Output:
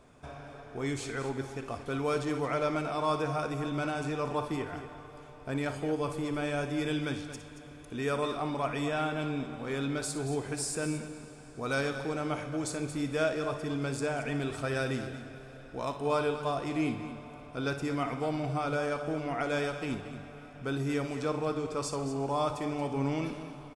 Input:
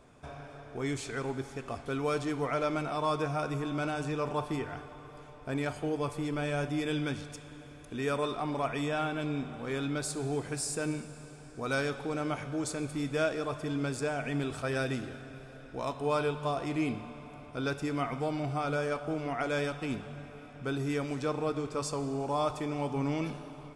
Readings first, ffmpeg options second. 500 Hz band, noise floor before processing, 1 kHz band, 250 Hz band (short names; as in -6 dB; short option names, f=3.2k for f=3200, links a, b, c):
+0.5 dB, -49 dBFS, +0.5 dB, +0.5 dB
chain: -af "aecho=1:1:58.31|227.4:0.251|0.251"